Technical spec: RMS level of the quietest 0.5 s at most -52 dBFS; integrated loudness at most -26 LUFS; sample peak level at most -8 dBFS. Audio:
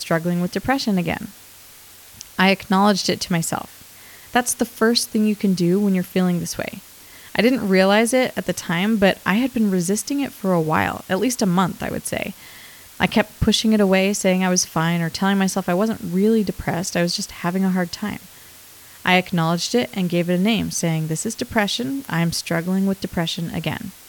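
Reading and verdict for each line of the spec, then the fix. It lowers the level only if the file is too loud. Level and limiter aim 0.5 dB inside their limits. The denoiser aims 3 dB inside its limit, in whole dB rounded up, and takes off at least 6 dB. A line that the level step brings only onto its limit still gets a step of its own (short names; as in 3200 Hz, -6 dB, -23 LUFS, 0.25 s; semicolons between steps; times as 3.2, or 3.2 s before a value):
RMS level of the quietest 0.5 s -44 dBFS: fail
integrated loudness -20.0 LUFS: fail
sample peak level -4.0 dBFS: fail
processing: denoiser 6 dB, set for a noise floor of -44 dBFS; gain -6.5 dB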